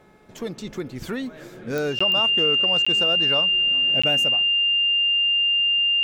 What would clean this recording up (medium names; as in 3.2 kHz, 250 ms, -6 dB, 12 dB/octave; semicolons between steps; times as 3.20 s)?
de-click; de-hum 427.2 Hz, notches 5; band-stop 2.8 kHz, Q 30; interpolate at 1.99/2.85/4.02 s, 15 ms